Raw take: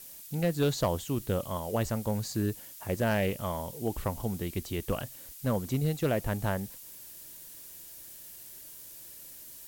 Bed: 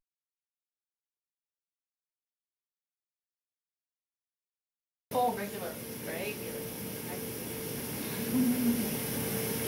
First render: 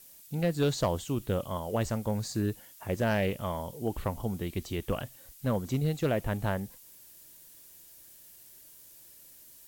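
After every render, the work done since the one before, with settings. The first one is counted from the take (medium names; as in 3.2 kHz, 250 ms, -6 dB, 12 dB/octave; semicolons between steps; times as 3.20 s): noise print and reduce 6 dB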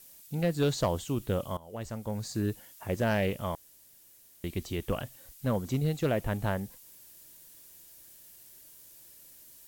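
1.57–2.50 s: fade in, from -17 dB; 3.55–4.44 s: room tone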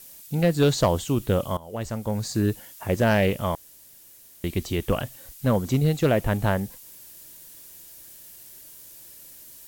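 trim +7.5 dB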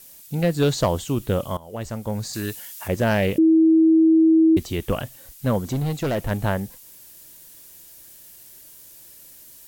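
2.33–2.88 s: tilt shelf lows -7.5 dB, about 940 Hz; 3.38–4.57 s: bleep 322 Hz -11.5 dBFS; 5.70–6.31 s: overload inside the chain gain 20 dB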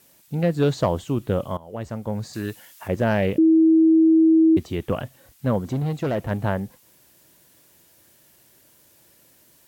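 high-pass 77 Hz; treble shelf 3.5 kHz -12 dB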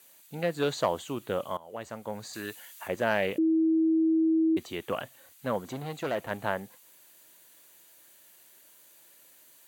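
high-pass 860 Hz 6 dB/octave; band-stop 5.3 kHz, Q 6.4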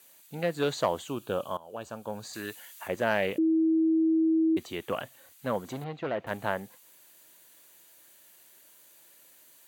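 1.08–2.25 s: Butterworth band-stop 2 kHz, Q 3.4; 5.84–6.27 s: distance through air 240 m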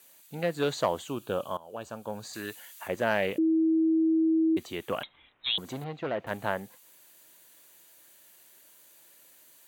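5.03–5.58 s: frequency inversion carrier 3.9 kHz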